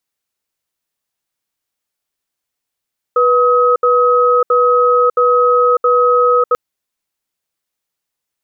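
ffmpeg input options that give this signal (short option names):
-f lavfi -i "aevalsrc='0.282*(sin(2*PI*490*t)+sin(2*PI*1270*t))*clip(min(mod(t,0.67),0.6-mod(t,0.67))/0.005,0,1)':d=3.39:s=44100"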